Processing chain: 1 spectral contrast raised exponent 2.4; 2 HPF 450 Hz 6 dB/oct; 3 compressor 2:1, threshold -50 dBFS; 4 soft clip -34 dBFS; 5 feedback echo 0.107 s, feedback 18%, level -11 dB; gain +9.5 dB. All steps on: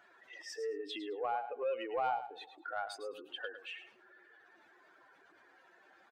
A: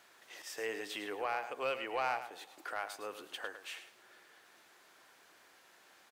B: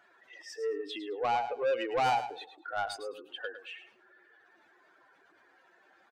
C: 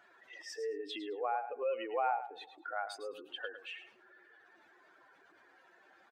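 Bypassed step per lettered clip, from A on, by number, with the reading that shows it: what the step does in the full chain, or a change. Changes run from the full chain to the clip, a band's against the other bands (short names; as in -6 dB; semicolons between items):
1, 8 kHz band +7.5 dB; 3, mean gain reduction 5.5 dB; 4, distortion -22 dB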